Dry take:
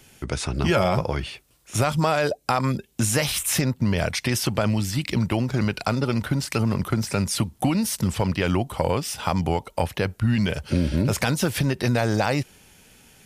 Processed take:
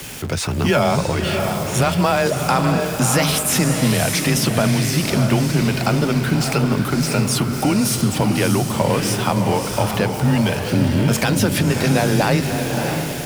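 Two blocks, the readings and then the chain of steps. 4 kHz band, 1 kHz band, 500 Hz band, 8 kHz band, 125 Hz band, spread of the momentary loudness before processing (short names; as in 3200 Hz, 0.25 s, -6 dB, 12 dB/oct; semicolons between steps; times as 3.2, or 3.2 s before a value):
+6.5 dB, +6.0 dB, +6.0 dB, +7.0 dB, +5.5 dB, 4 LU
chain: zero-crossing step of -31 dBFS; diffused feedback echo 0.62 s, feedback 47%, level -4.5 dB; frequency shift +20 Hz; gain +3 dB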